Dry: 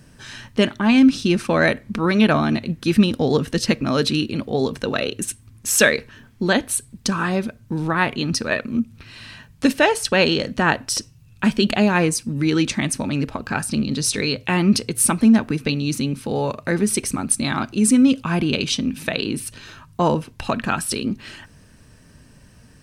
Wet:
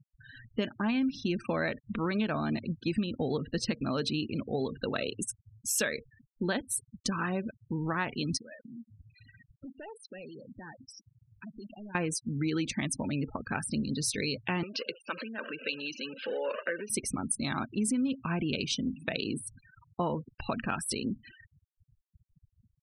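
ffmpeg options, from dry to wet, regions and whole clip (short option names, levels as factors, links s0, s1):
-filter_complex "[0:a]asettb=1/sr,asplit=3[s0][s1][s2];[s0]atrim=end=8.374[s3];[s1]atrim=start=8.37:end=11.95,asetpts=PTS-STARTPTS,afade=t=in:d=0.004:c=qsin,afade=t=out:st=3.576:d=0.004:c=qsin,asoftclip=type=hard:threshold=0.178,acompressor=threshold=0.02:ratio=8:attack=3.2:release=140:knee=1:detection=peak[s4];[s2]atrim=start=11.946[s5];[s3][s4]acrossfade=d=0.004:c1=hsin:c2=qsin[s6];[s6][s5]acrossfade=d=0.004:c1=qsin:c2=hsin,asettb=1/sr,asplit=3[s7][s8][s9];[s7]atrim=end=14.634[s10];[s8]atrim=start=14.63:end=16.9,asetpts=PTS-STARTPTS,afade=t=in:d=0.004:c=qsin,afade=t=out:st=2.266:d=0.004:c=qsin,aeval=exprs='val(0)+0.5*0.0531*sgn(val(0))':c=same,acompressor=threshold=0.126:ratio=5:attack=3.2:release=140:knee=1:detection=peak,highpass=500,equalizer=f=530:t=q:w=4:g=9,equalizer=f=770:t=q:w=4:g=-9,equalizer=f=1600:t=q:w=4:g=6,equalizer=f=2800:t=q:w=4:g=8,lowpass=f=5100:w=0.5412,lowpass=f=5100:w=1.3066[s11];[s9]atrim=start=16.896[s12];[s10][s11]acrossfade=d=0.004:c1=hsin:c2=qsin[s13];[s13][s12]acrossfade=d=0.004:c1=qsin:c2=hsin,afftfilt=real='re*gte(hypot(re,im),0.0398)':imag='im*gte(hypot(re,im),0.0398)':win_size=1024:overlap=0.75,acompressor=threshold=0.126:ratio=6,volume=0.376"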